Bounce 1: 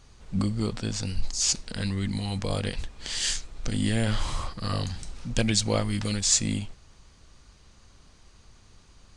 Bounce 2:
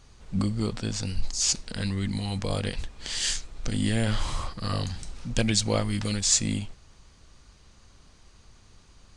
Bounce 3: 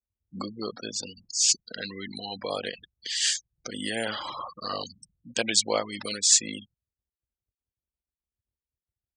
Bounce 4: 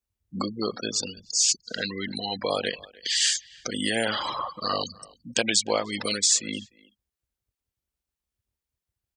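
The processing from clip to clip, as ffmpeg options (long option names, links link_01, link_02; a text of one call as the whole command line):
ffmpeg -i in.wav -af anull out.wav
ffmpeg -i in.wav -af "afftfilt=real='re*gte(hypot(re,im),0.0224)':imag='im*gte(hypot(re,im),0.0224)':win_size=1024:overlap=0.75,highpass=440,volume=3dB" out.wav
ffmpeg -i in.wav -filter_complex "[0:a]acompressor=threshold=-25dB:ratio=4,asplit=2[link_01][link_02];[link_02]adelay=300,highpass=300,lowpass=3400,asoftclip=type=hard:threshold=-19dB,volume=-22dB[link_03];[link_01][link_03]amix=inputs=2:normalize=0,volume=5.5dB" out.wav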